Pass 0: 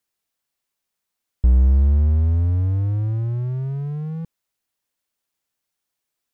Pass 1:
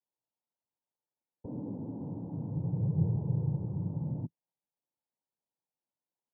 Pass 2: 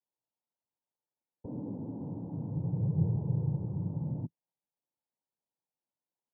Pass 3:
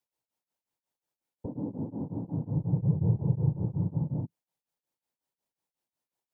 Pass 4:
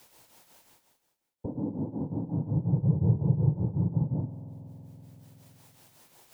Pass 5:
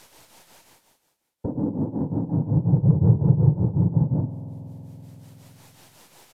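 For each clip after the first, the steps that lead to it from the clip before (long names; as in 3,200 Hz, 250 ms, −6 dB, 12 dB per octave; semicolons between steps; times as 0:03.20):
cochlear-implant simulation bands 8; Chebyshev low-pass filter 940 Hz, order 4; level −6.5 dB
no processing that can be heard
tremolo along a rectified sine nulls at 5.5 Hz; level +7 dB
spring reverb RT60 1.8 s, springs 47 ms, chirp 40 ms, DRR 12.5 dB; reversed playback; upward compression, threshold −36 dBFS; reversed playback; level +2 dB
stylus tracing distortion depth 0.12 ms; downsampling to 32,000 Hz; level +7 dB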